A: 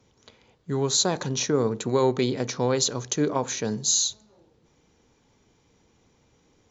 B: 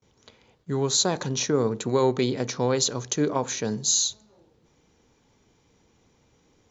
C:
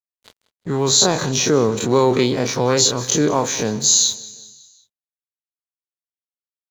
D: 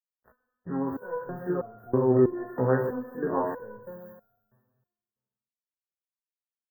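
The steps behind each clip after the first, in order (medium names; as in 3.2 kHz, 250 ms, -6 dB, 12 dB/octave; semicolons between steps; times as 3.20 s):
gate with hold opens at -55 dBFS
every event in the spectrogram widened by 60 ms; crossover distortion -44 dBFS; feedback delay 185 ms, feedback 53%, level -19.5 dB; trim +4.5 dB
brick-wall FIR band-stop 1.9–13 kHz; reverberation RT60 1.4 s, pre-delay 7 ms, DRR 4.5 dB; resonator arpeggio 3.1 Hz 64–700 Hz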